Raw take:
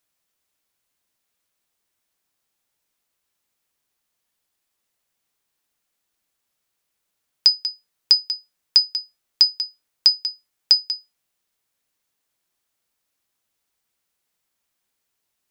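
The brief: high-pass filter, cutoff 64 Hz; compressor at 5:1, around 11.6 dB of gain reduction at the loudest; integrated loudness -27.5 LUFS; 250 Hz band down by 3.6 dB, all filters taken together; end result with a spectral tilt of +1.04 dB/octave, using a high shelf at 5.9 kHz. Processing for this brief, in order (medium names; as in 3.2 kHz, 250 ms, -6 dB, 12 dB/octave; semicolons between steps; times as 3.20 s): high-pass 64 Hz; peaking EQ 250 Hz -5 dB; treble shelf 5.9 kHz +7.5 dB; compression 5:1, threshold -20 dBFS; trim -2.5 dB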